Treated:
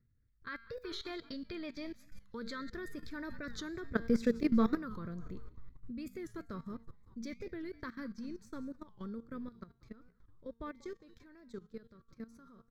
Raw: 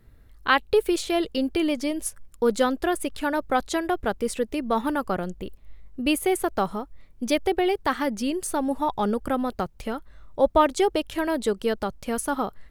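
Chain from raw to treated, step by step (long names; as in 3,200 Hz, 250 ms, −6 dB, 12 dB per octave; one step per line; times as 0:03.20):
source passing by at 0:04.32, 11 m/s, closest 6.2 metres
in parallel at −1 dB: brickwall limiter −24 dBFS, peak gain reduction 11 dB
on the sum: parametric band 120 Hz +10 dB 1.5 octaves
phaser with its sweep stopped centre 2,900 Hz, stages 6
tuned comb filter 230 Hz, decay 0.54 s, harmonics all, mix 70%
on a send: echo with shifted repeats 189 ms, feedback 51%, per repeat −55 Hz, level −18.5 dB
on the sum: gain on a spectral selection 0:00.85–0:02.70, 570–4,800 Hz +9 dB
high-shelf EQ 10,000 Hz −9 dB
output level in coarse steps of 16 dB
wow of a warped record 45 rpm, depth 160 cents
level +6.5 dB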